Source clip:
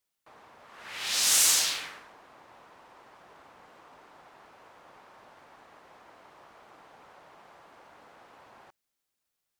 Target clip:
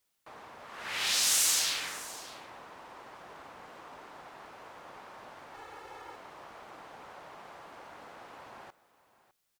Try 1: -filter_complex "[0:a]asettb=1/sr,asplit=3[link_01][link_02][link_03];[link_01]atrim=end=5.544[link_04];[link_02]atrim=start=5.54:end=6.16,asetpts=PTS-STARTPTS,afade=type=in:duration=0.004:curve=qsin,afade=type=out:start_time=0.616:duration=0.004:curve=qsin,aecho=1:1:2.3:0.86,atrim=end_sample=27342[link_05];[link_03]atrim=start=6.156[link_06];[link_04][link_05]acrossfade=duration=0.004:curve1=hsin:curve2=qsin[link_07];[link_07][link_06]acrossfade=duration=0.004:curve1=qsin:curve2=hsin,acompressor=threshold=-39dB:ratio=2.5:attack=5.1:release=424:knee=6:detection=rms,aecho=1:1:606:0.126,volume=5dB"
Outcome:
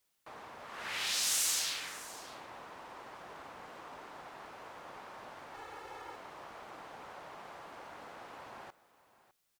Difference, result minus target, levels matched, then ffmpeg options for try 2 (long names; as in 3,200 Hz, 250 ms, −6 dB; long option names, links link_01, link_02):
downward compressor: peak gain reduction +5 dB
-filter_complex "[0:a]asettb=1/sr,asplit=3[link_01][link_02][link_03];[link_01]atrim=end=5.544[link_04];[link_02]atrim=start=5.54:end=6.16,asetpts=PTS-STARTPTS,afade=type=in:duration=0.004:curve=qsin,afade=type=out:start_time=0.616:duration=0.004:curve=qsin,aecho=1:1:2.3:0.86,atrim=end_sample=27342[link_05];[link_03]atrim=start=6.156[link_06];[link_04][link_05]acrossfade=duration=0.004:curve1=hsin:curve2=qsin[link_07];[link_07][link_06]acrossfade=duration=0.004:curve1=qsin:curve2=hsin,acompressor=threshold=-30.5dB:ratio=2.5:attack=5.1:release=424:knee=6:detection=rms,aecho=1:1:606:0.126,volume=5dB"